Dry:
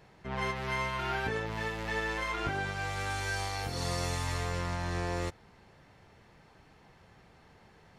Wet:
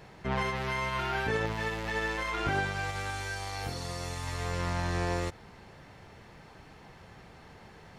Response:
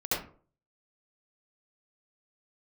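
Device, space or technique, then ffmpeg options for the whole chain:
de-esser from a sidechain: -filter_complex "[0:a]asplit=2[link_01][link_02];[link_02]highpass=6800,apad=whole_len=352099[link_03];[link_01][link_03]sidechaincompress=threshold=-54dB:ratio=4:attack=0.53:release=85,volume=7dB"

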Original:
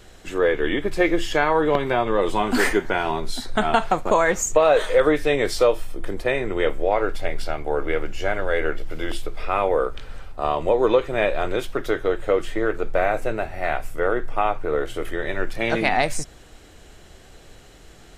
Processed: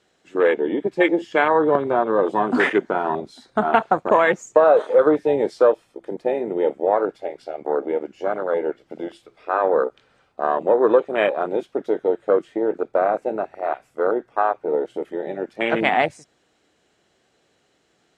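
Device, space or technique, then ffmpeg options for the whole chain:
over-cleaned archive recording: -af "highpass=180,lowpass=7900,afwtdn=0.0708,volume=2.5dB"

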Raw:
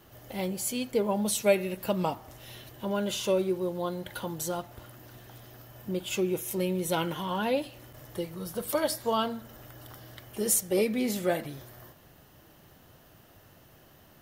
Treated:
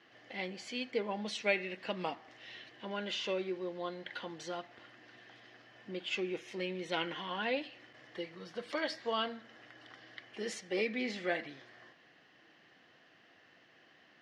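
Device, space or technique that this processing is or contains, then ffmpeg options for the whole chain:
phone earpiece: -af "highpass=390,equalizer=frequency=400:width_type=q:width=4:gain=-6,equalizer=frequency=590:width_type=q:width=4:gain=-9,equalizer=frequency=910:width_type=q:width=4:gain=-9,equalizer=frequency=1300:width_type=q:width=4:gain=-6,equalizer=frequency=1900:width_type=q:width=4:gain=6,equalizer=frequency=3700:width_type=q:width=4:gain=-4,lowpass=frequency=4400:width=0.5412,lowpass=frequency=4400:width=1.3066"

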